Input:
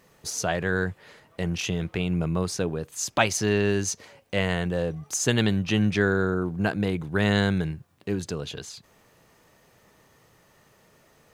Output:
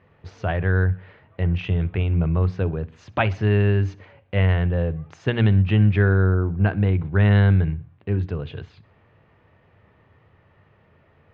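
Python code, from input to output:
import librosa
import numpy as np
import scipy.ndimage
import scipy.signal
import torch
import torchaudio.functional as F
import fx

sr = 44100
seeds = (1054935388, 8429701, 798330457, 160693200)

y = scipy.signal.sosfilt(scipy.signal.butter(4, 2800.0, 'lowpass', fs=sr, output='sos'), x)
y = fx.peak_eq(y, sr, hz=91.0, db=14.5, octaves=0.89)
y = fx.hum_notches(y, sr, base_hz=60, count=5)
y = fx.echo_feedback(y, sr, ms=63, feedback_pct=49, wet_db=-21.5)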